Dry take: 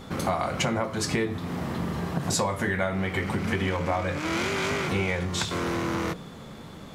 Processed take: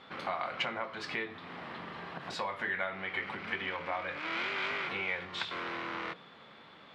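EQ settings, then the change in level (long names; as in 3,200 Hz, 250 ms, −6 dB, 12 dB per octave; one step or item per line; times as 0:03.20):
resonant band-pass 4,700 Hz, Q 0.63
high-frequency loss of the air 420 metres
+5.0 dB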